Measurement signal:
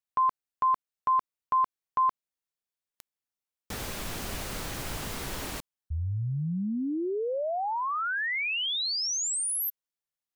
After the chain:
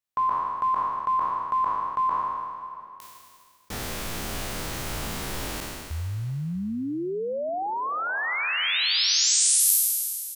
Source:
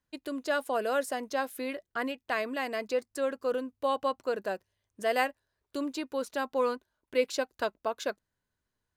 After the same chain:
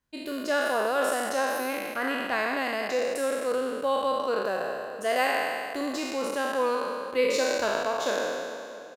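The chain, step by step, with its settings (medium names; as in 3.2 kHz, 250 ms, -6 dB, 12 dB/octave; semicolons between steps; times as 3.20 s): spectral sustain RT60 2.12 s; echo from a far wall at 110 m, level -18 dB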